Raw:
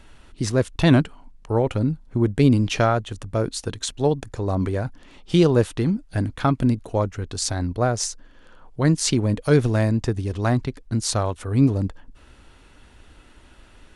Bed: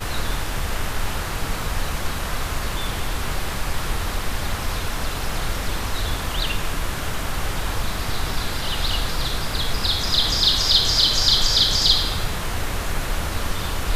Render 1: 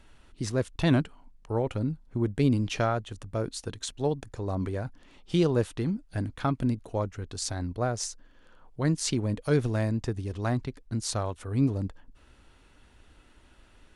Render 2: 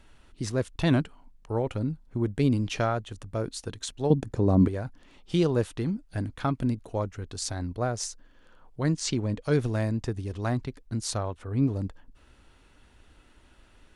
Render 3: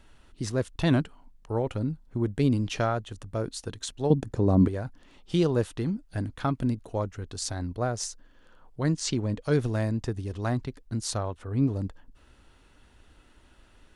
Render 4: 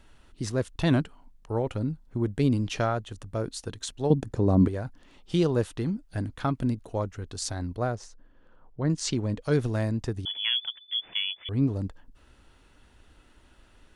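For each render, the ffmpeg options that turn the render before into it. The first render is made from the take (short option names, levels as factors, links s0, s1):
-af "volume=0.422"
-filter_complex "[0:a]asettb=1/sr,asplit=3[s0][s1][s2];[s0]atrim=end=4.104[s3];[s1]atrim=start=4.1:end=4.68,asetpts=PTS-STARTPTS,afade=t=in:d=0.004:c=qsin,afade=t=out:st=0.576:d=0.004:c=qsin,equalizer=f=210:w=0.43:g=13[s4];[s2]atrim=start=4.676[s5];[s3][s4]acrossfade=d=0.004:c1=hsin:c2=qsin[s6];[s6][s5]acrossfade=d=0.004:c1=qsin:c2=hsin,asettb=1/sr,asplit=3[s7][s8][s9];[s7]atrim=end=8.944[s10];[s8]atrim=start=8.94:end=9.52,asetpts=PTS-STARTPTS,afade=t=in:d=0.004:c=qsin,afade=t=out:st=0.576:d=0.004:c=qsin,lowpass=f=8100:w=0.5412,lowpass=f=8100:w=1.3066[s11];[s9]atrim=start=9.516[s12];[s10][s11]acrossfade=d=0.004:c1=hsin:c2=qsin[s13];[s13][s12]acrossfade=d=0.004:c1=qsin:c2=hsin,asplit=3[s14][s15][s16];[s14]afade=t=out:st=11.17:d=0.02[s17];[s15]lowpass=f=2500:p=1,afade=t=in:st=11.17:d=0.02,afade=t=out:st=11.69:d=0.02[s18];[s16]afade=t=in:st=11.69:d=0.02[s19];[s17][s18][s19]amix=inputs=3:normalize=0"
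-af "equalizer=f=2300:w=6.3:g=-2.5"
-filter_complex "[0:a]asettb=1/sr,asplit=3[s0][s1][s2];[s0]atrim=end=7.954[s3];[s1]atrim=start=7.95:end=8.9,asetpts=PTS-STARTPTS,afade=t=in:d=0.004:c=qsin,afade=t=out:st=0.946:d=0.004:c=qsin,lowpass=f=1100:p=1[s4];[s2]atrim=start=8.896[s5];[s3][s4]acrossfade=d=0.004:c1=hsin:c2=qsin[s6];[s6][s5]acrossfade=d=0.004:c1=qsin:c2=hsin,asettb=1/sr,asplit=3[s7][s8][s9];[s7]atrim=end=10.254[s10];[s8]atrim=start=10.25:end=11.49,asetpts=PTS-STARTPTS,afade=t=in:d=0.004:c=qsin,afade=t=out:st=1.236:d=0.004:c=qsin,lowpass=f=3000:t=q:w=0.5098,lowpass=f=3000:t=q:w=0.6013,lowpass=f=3000:t=q:w=0.9,lowpass=f=3000:t=q:w=2.563,afreqshift=-3500[s11];[s9]atrim=start=11.486[s12];[s10][s11]acrossfade=d=0.004:c1=hsin:c2=qsin[s13];[s13][s12]acrossfade=d=0.004:c1=qsin:c2=hsin"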